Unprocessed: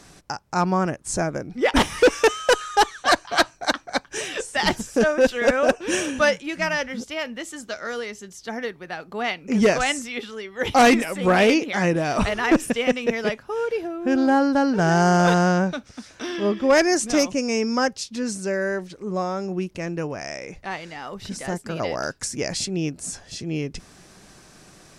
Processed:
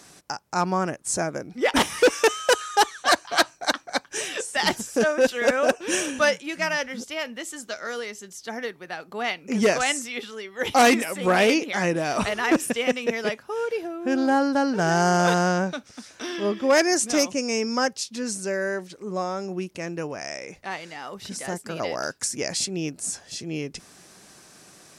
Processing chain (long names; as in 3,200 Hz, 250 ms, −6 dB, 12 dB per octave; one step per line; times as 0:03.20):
high-pass filter 200 Hz 6 dB per octave
high-shelf EQ 7,500 Hz +7.5 dB
level −1.5 dB